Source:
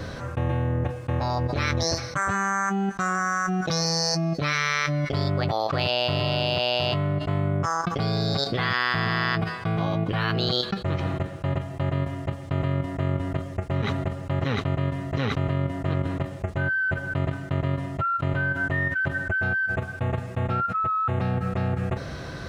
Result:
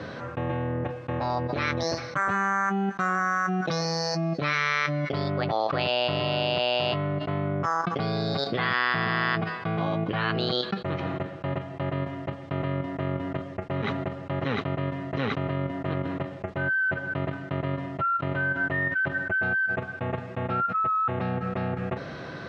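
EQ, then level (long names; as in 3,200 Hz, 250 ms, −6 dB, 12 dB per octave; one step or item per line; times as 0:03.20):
band-pass filter 160–3,600 Hz
0.0 dB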